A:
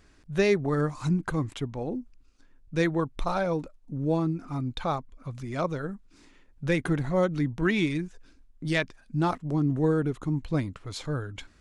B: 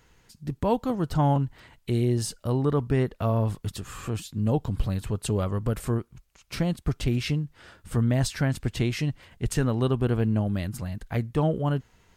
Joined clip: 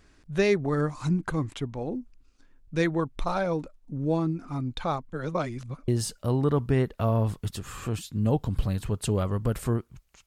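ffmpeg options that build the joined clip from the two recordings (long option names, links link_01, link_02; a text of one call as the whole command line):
ffmpeg -i cue0.wav -i cue1.wav -filter_complex "[0:a]apad=whole_dur=10.26,atrim=end=10.26,asplit=2[link_01][link_02];[link_01]atrim=end=5.132[link_03];[link_02]atrim=start=5.128:end=5.882,asetpts=PTS-STARTPTS,areverse[link_04];[1:a]atrim=start=2.088:end=6.47[link_05];[link_03][link_04]acrossfade=duration=0.004:curve1=hsin:curve2=hsin[link_06];[link_06][link_05]acrossfade=duration=0.004:curve1=hsin:curve2=hsin" out.wav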